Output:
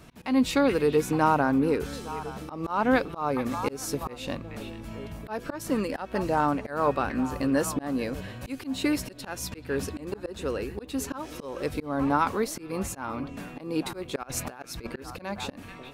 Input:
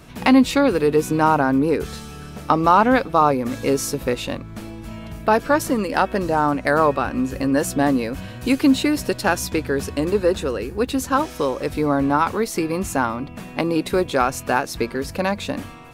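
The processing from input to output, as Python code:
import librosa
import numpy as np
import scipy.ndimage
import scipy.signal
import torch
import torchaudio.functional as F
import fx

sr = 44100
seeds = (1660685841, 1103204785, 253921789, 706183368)

y = fx.echo_stepped(x, sr, ms=433, hz=2600.0, octaves=-1.4, feedback_pct=70, wet_db=-10.0)
y = fx.over_compress(y, sr, threshold_db=-27.0, ratio=-0.5, at=(14.23, 14.87))
y = fx.auto_swell(y, sr, attack_ms=235.0)
y = F.gain(torch.from_numpy(y), -5.5).numpy()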